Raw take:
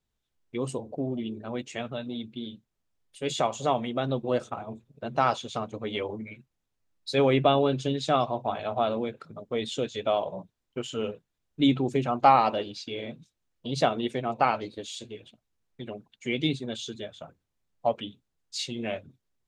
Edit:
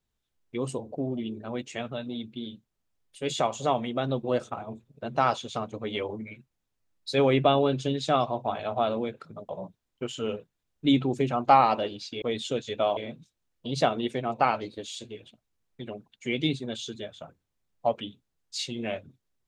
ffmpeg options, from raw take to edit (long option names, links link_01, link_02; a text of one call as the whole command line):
ffmpeg -i in.wav -filter_complex "[0:a]asplit=4[link_01][link_02][link_03][link_04];[link_01]atrim=end=9.492[link_05];[link_02]atrim=start=10.238:end=12.972[link_06];[link_03]atrim=start=9.488:end=10.242[link_07];[link_04]atrim=start=12.968[link_08];[link_05][link_06]acrossfade=duration=0.004:curve1=hsin:curve2=hsin[link_09];[link_09][link_07]acrossfade=duration=0.004:curve1=hsin:curve2=hsin[link_10];[link_10][link_08]acrossfade=duration=0.004:curve1=hsin:curve2=hsin" out.wav